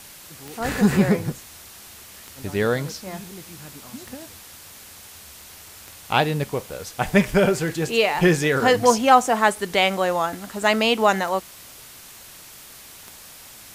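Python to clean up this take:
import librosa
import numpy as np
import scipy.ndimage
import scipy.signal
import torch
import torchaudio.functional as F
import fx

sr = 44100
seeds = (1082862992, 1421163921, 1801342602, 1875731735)

y = fx.fix_declick_ar(x, sr, threshold=10.0)
y = fx.noise_reduce(y, sr, print_start_s=13.16, print_end_s=13.66, reduce_db=22.0)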